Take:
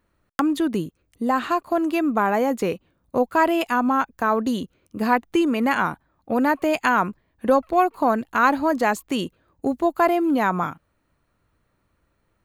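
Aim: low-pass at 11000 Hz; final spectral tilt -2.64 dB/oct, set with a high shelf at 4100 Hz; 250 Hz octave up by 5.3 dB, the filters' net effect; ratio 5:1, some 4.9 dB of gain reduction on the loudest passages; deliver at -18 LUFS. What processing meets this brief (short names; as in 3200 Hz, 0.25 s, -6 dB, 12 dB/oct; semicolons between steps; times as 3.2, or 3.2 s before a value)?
LPF 11000 Hz; bell 250 Hz +6.5 dB; high shelf 4100 Hz -7.5 dB; compressor 5:1, threshold -17 dBFS; gain +5 dB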